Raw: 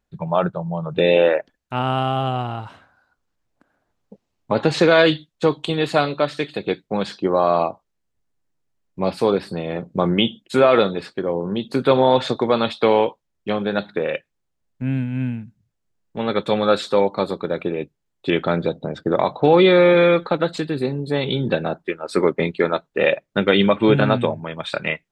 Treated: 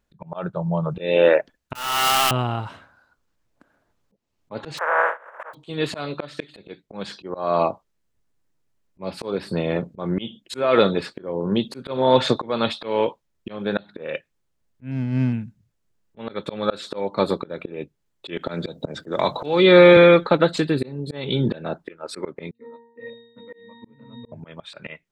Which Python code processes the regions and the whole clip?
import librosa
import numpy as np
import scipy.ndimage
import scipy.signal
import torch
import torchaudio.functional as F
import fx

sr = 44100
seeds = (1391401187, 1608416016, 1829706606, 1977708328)

y = fx.chain(x, sr, fx.crossing_spikes(level_db=-18.0),
    fx.highpass(hz=1400.0, slope=12),
    fx.power_curve(exponent=0.35), at=(1.75, 2.31))
y = fx.spec_flatten(y, sr, power=0.14, at=(4.77, 5.53), fade=0.02)
y = fx.ellip_bandpass(y, sr, low_hz=510.0, high_hz=1600.0, order=3, stop_db=50, at=(4.77, 5.53), fade=0.02)
y = fx.pre_swell(y, sr, db_per_s=120.0, at=(4.77, 5.53), fade=0.02)
y = fx.chain(y, sr, fx.backlash(play_db=-32.5),
    fx.air_absorb(metres=50.0), at=(14.91, 15.33))
y = fx.chain(y, sr, fx.high_shelf(hz=4800.0, db=11.5),
    fx.band_squash(depth_pct=70), at=(18.37, 19.97))
y = fx.chain(y, sr, fx.highpass(hz=150.0, slope=24),
    fx.peak_eq(hz=580.0, db=-7.5, octaves=0.46),
    fx.octave_resonator(note='A#', decay_s=0.79), at=(22.51, 24.32))
y = fx.notch(y, sr, hz=760.0, q=12.0)
y = fx.auto_swell(y, sr, attack_ms=347.0)
y = y * 10.0 ** (3.0 / 20.0)